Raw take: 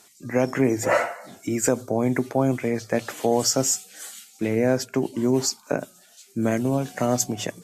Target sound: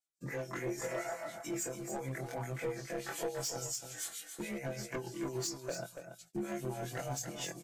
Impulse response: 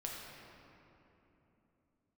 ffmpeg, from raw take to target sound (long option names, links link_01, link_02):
-filter_complex "[0:a]afftfilt=real='re':imag='-im':win_size=2048:overlap=0.75,bandreject=frequency=60:width_type=h:width=6,bandreject=frequency=120:width_type=h:width=6,agate=range=-36dB:threshold=-51dB:ratio=16:detection=peak,aecho=1:1:6:0.62,acrossover=split=130|580|4700[link_01][link_02][link_03][link_04];[link_01]acompressor=threshold=-36dB:ratio=4[link_05];[link_02]acompressor=threshold=-35dB:ratio=4[link_06];[link_03]acompressor=threshold=-34dB:ratio=4[link_07];[link_05][link_06][link_07][link_04]amix=inputs=4:normalize=0,alimiter=limit=-22dB:level=0:latency=1:release=72,acompressor=threshold=-33dB:ratio=10,acrossover=split=2000[link_08][link_09];[link_08]aeval=exprs='val(0)*(1-0.7/2+0.7/2*cos(2*PI*7*n/s))':channel_layout=same[link_10];[link_09]aeval=exprs='val(0)*(1-0.7/2-0.7/2*cos(2*PI*7*n/s))':channel_layout=same[link_11];[link_10][link_11]amix=inputs=2:normalize=0,asoftclip=type=hard:threshold=-34dB,flanger=delay=1.3:depth=1.6:regen=55:speed=0.84:shape=sinusoidal,asplit=2[link_12][link_13];[link_13]aecho=0:1:284:0.398[link_14];[link_12][link_14]amix=inputs=2:normalize=0,volume=6dB"